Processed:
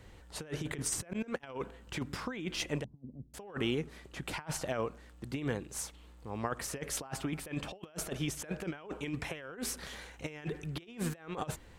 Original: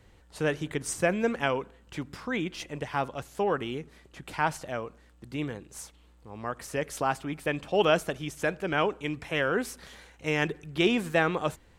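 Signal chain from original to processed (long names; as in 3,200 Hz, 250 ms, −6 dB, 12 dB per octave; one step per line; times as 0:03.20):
0:01.13–0:01.59: noise gate −29 dBFS, range −33 dB
compressor whose output falls as the input rises −34 dBFS, ratio −0.5
0:02.84–0:03.34: transistor ladder low-pass 270 Hz, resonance 50%
level −2.5 dB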